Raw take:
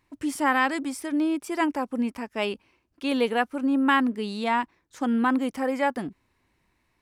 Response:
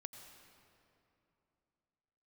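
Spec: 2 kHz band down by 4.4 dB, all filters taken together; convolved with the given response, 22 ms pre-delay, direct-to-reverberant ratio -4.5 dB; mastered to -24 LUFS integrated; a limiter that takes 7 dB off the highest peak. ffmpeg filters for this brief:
-filter_complex "[0:a]equalizer=f=2000:t=o:g=-5.5,alimiter=limit=0.112:level=0:latency=1,asplit=2[s0][s1];[1:a]atrim=start_sample=2205,adelay=22[s2];[s1][s2]afir=irnorm=-1:irlink=0,volume=2.82[s3];[s0][s3]amix=inputs=2:normalize=0,volume=0.841"

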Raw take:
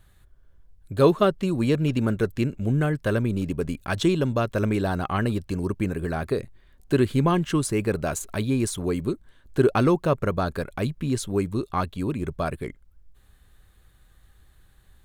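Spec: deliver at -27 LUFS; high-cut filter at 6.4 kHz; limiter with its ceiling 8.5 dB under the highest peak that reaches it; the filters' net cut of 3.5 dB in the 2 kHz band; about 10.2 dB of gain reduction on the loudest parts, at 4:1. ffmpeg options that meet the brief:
-af "lowpass=6400,equalizer=f=2000:t=o:g=-5,acompressor=threshold=0.0501:ratio=4,volume=2.37,alimiter=limit=0.141:level=0:latency=1"

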